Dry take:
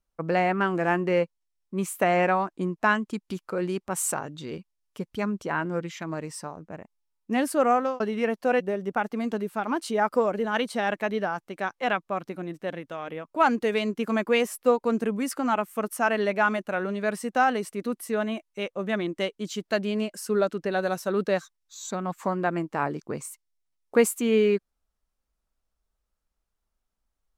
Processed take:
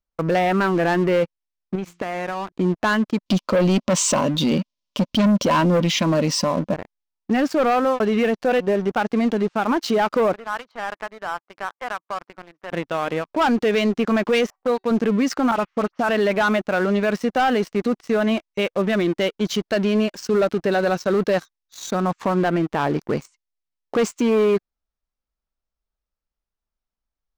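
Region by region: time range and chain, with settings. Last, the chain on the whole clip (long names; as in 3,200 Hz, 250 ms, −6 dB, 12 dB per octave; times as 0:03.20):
0:01.75–0:02.52: high-shelf EQ 6,700 Hz −8 dB + hum removal 57.83 Hz, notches 6 + downward compressor 10 to 1, threshold −34 dBFS
0:03.26–0:06.74: high shelf with overshoot 2,200 Hz +10 dB, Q 1.5 + hollow resonant body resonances 230/560/1,000 Hz, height 16 dB, ringing for 35 ms
0:10.33–0:12.72: downward compressor, threshold −29 dBFS + resonant band-pass 1,100 Hz, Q 1.7
0:14.50–0:14.91: dynamic equaliser 2,700 Hz, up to −5 dB, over −40 dBFS, Q 0.83 + tuned comb filter 380 Hz, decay 0.28 s + envelope-controlled low-pass 660–4,200 Hz up, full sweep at −27.5 dBFS
0:15.51–0:16.09: downward compressor, threshold −25 dBFS + high-frequency loss of the air 230 metres + all-pass dispersion highs, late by 50 ms, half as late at 2,600 Hz
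whole clip: Butterworth low-pass 6,300 Hz; leveller curve on the samples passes 3; brickwall limiter −13 dBFS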